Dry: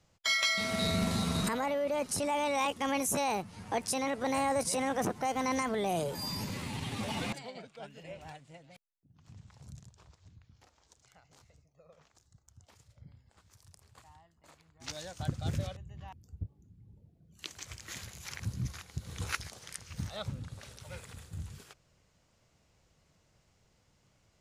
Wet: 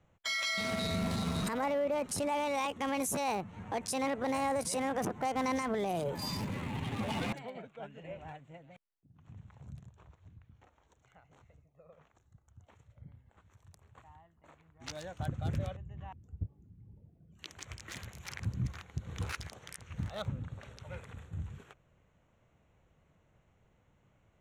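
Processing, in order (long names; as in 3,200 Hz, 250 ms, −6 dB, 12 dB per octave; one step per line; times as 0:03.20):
adaptive Wiener filter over 9 samples
brickwall limiter −26.5 dBFS, peak gain reduction 8.5 dB
level +1.5 dB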